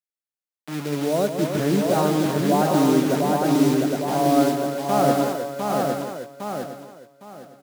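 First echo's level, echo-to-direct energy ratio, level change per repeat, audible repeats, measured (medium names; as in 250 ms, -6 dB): -9.0 dB, 2.0 dB, no regular repeats, 14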